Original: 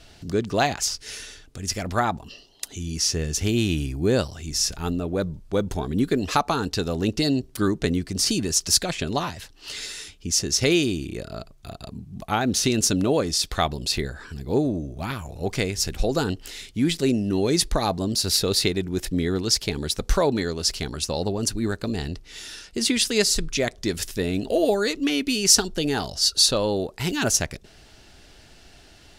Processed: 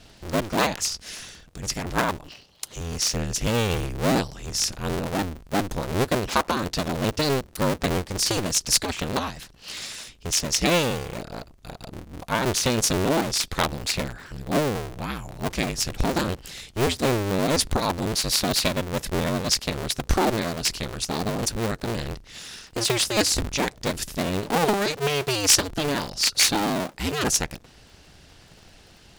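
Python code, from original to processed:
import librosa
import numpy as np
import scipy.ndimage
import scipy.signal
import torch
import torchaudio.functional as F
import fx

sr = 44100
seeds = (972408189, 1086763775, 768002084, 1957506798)

y = fx.cycle_switch(x, sr, every=2, mode='inverted')
y = y * 10.0 ** (-1.0 / 20.0)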